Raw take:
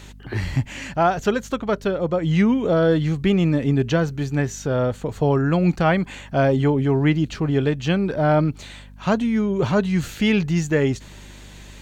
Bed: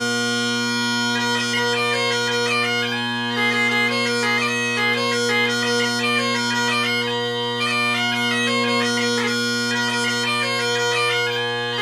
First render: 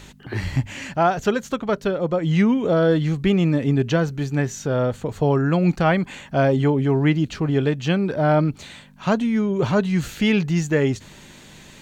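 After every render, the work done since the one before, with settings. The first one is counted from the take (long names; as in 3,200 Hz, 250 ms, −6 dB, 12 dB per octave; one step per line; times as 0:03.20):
hum removal 50 Hz, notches 2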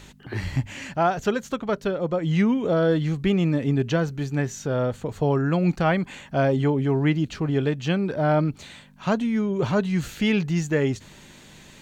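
level −3 dB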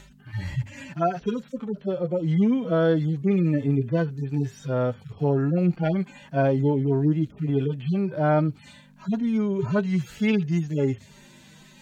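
harmonic-percussive split with one part muted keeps harmonic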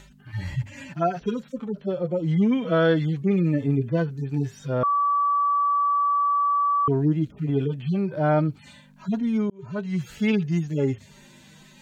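0:02.51–0:03.20: parametric band 2,300 Hz +8.5 dB 1.8 octaves
0:04.83–0:06.88: beep over 1,150 Hz −18.5 dBFS
0:09.50–0:10.11: fade in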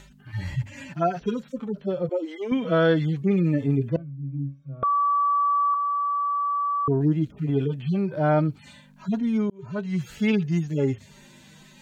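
0:02.09–0:02.52: linear-phase brick-wall high-pass 250 Hz
0:03.96–0:04.83: resonances in every octave C#, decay 0.26 s
0:05.74–0:07.01: low-pass filter 1,100 Hz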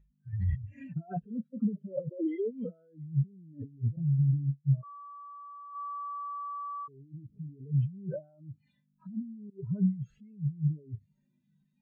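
compressor whose output falls as the input rises −33 dBFS, ratio −1
every bin expanded away from the loudest bin 2.5 to 1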